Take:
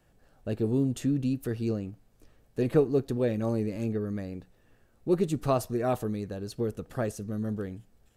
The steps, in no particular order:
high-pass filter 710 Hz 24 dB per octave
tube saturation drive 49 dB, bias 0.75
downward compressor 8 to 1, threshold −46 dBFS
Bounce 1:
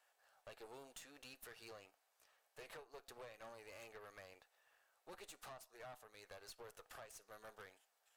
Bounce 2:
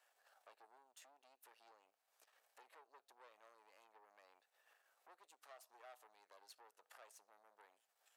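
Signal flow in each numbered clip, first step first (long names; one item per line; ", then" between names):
high-pass filter, then downward compressor, then tube saturation
downward compressor, then tube saturation, then high-pass filter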